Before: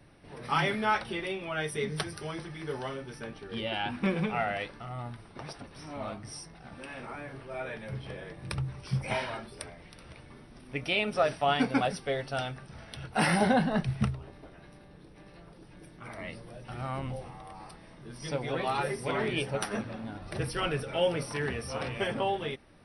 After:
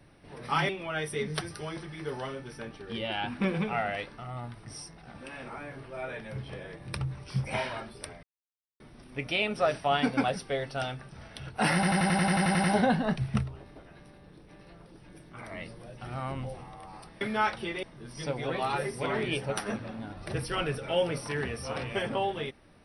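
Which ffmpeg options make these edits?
-filter_complex "[0:a]asplit=17[a][b][c][d][e][f][g][h][i][j][k][l][m][n][o][p][q];[a]atrim=end=0.692[r];[b]atrim=start=1.308:end=5.272[s];[c]atrim=start=6.218:end=9.8,asetpts=PTS-STARTPTS,afade=t=out:st=3.578:d=0.004:c=hsin[t];[d]atrim=start=9.8:end=10.37,asetpts=PTS-STARTPTS,volume=0[u];[e]atrim=start=10.37:end=13.402,asetpts=PTS-STARTPTS,afade=t=in:d=0.004:c=hsin[v];[f]atrim=start=13.308:end=13.402[w];[g]atrim=start=13.308:end=13.402[x];[h]atrim=start=13.308:end=13.402[y];[i]atrim=start=13.308:end=13.402[z];[j]atrim=start=13.308:end=13.402[aa];[k]atrim=start=13.308:end=13.402[ab];[l]atrim=start=13.308:end=13.402[ac];[m]atrim=start=13.308:end=13.402[ad];[n]atrim=start=13.308:end=13.402[ae];[o]atrim=start=13.308:end=17.882[af];[p]atrim=start=0.688:end=1.312[ag];[q]atrim=start=17.878[ah];[r][s]acrossfade=d=0.004:c1=hsin:c2=hsin[ai];[t][u][v]concat=n=3:v=0:a=1[aj];[ai][aj]acrossfade=d=0.004:c1=hsin:c2=hsin[ak];[ak][w]acrossfade=d=0.004:c1=hsin:c2=hsin[al];[al][x]acrossfade=d=0.004:c1=hsin:c2=hsin[am];[am][y]acrossfade=d=0.004:c1=hsin:c2=hsin[an];[an][z]acrossfade=d=0.004:c1=hsin:c2=hsin[ao];[ao][aa]acrossfade=d=0.004:c1=hsin:c2=hsin[ap];[ap][ab]acrossfade=d=0.004:c1=hsin:c2=hsin[aq];[aq][ac]acrossfade=d=0.004:c1=hsin:c2=hsin[ar];[ar][ad]acrossfade=d=0.004:c1=hsin:c2=hsin[as];[as][ae]acrossfade=d=0.004:c1=hsin:c2=hsin[at];[at][af]acrossfade=d=0.004:c1=hsin:c2=hsin[au];[au][ag]acrossfade=d=0.004:c1=hsin:c2=hsin[av];[av][ah]acrossfade=d=0.004:c1=hsin:c2=hsin"

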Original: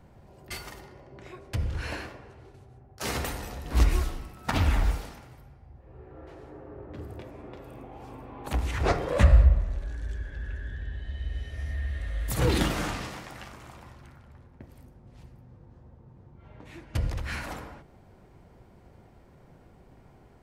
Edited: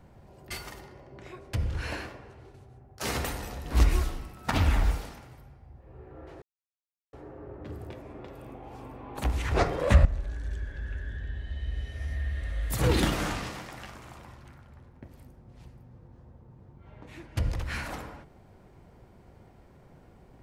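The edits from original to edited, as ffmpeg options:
-filter_complex "[0:a]asplit=3[a][b][c];[a]atrim=end=6.42,asetpts=PTS-STARTPTS,afade=t=out:st=6.416:d=0.004:c=hsin,apad=pad_dur=0.71[d];[b]atrim=start=6.42:end=9.342,asetpts=PTS-STARTPTS,afade=t=in:d=0.004:c=hsin[e];[c]atrim=start=9.628[f];[d][e]concat=n=2:v=0:a=1[g];[g][f]acrossfade=d=0.004:c1=hsin:c2=hsin"

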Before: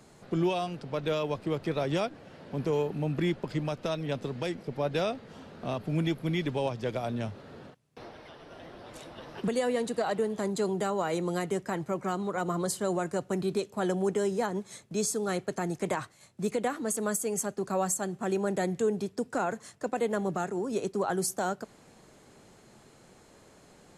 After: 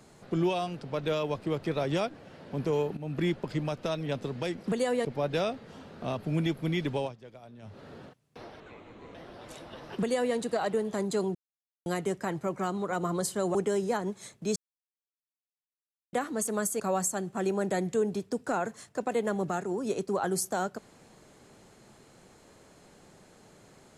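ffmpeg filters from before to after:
-filter_complex "[0:a]asplit=14[a][b][c][d][e][f][g][h][i][j][k][l][m][n];[a]atrim=end=2.97,asetpts=PTS-STARTPTS,afade=t=out:st=2.966:d=0.004:c=hsin:silence=0.211349[o];[b]atrim=start=2.97:end=4.662,asetpts=PTS-STARTPTS,afade=t=in:d=0.26:silence=0.211349[p];[c]atrim=start=9.418:end=9.812[q];[d]atrim=start=4.658:end=6.78,asetpts=PTS-STARTPTS,afade=t=out:st=1.922:d=0.2:silence=0.141254[r];[e]atrim=start=6.78:end=7.23,asetpts=PTS-STARTPTS,volume=-17dB[s];[f]atrim=start=7.23:end=8.214,asetpts=PTS-STARTPTS,afade=t=in:d=0.2:silence=0.141254[t];[g]atrim=start=8.21:end=8.6,asetpts=PTS-STARTPTS,asetrate=31311,aresample=44100[u];[h]atrim=start=8.596:end=10.8,asetpts=PTS-STARTPTS,afade=t=out:st=2.2:d=0.004:c=hsin[v];[i]atrim=start=10.8:end=11.31,asetpts=PTS-STARTPTS,volume=0[w];[j]atrim=start=11.31:end=13.002,asetpts=PTS-STARTPTS,afade=t=in:d=0.004:c=hsin[x];[k]atrim=start=14.038:end=15.05,asetpts=PTS-STARTPTS,afade=t=out:st=1.008:d=0.004:c=hsin[y];[l]atrim=start=15.05:end=16.62,asetpts=PTS-STARTPTS,volume=0[z];[m]atrim=start=16.62:end=17.292,asetpts=PTS-STARTPTS,afade=t=in:d=0.004:c=hsin[aa];[n]atrim=start=17.658[ab];[o][p]concat=n=2:v=0:a=1[ac];[ac][q]acrossfade=d=0.004:c1=hsin:c2=hsin[ad];[r][s][t]concat=n=3:v=0:a=1[ae];[ad][ae]acrossfade=d=0.004:c1=hsin:c2=hsin[af];[af][u]acrossfade=d=0.004:c1=hsin:c2=hsin[ag];[v][w][x]concat=n=3:v=0:a=1[ah];[ag][ah]acrossfade=d=0.004:c1=hsin:c2=hsin[ai];[y][z][aa]concat=n=3:v=0:a=1[aj];[ai][aj]acrossfade=d=0.004:c1=hsin:c2=hsin[ak];[ak][ab]acrossfade=d=0.004:c1=hsin:c2=hsin"

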